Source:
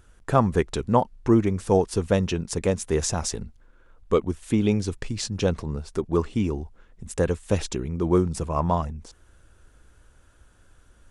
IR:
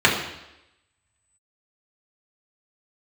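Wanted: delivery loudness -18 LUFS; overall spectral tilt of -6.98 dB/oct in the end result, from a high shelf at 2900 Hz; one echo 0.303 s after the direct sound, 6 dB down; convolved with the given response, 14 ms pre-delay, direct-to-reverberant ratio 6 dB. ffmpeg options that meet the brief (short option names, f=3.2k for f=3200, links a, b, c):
-filter_complex "[0:a]highshelf=f=2.9k:g=-6,aecho=1:1:303:0.501,asplit=2[a][b];[1:a]atrim=start_sample=2205,adelay=14[c];[b][c]afir=irnorm=-1:irlink=0,volume=-28dB[d];[a][d]amix=inputs=2:normalize=0,volume=5.5dB"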